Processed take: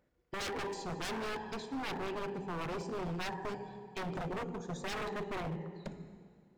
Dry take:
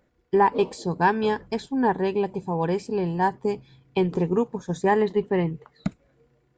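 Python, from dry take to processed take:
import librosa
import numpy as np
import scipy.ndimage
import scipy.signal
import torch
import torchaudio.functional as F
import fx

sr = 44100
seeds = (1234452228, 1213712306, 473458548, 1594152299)

y = fx.diode_clip(x, sr, knee_db=-19.5)
y = fx.rev_plate(y, sr, seeds[0], rt60_s=2.0, hf_ratio=0.85, predelay_ms=0, drr_db=8.0)
y = 10.0 ** (-24.5 / 20.0) * (np.abs((y / 10.0 ** (-24.5 / 20.0) + 3.0) % 4.0 - 2.0) - 1.0)
y = y * librosa.db_to_amplitude(-8.5)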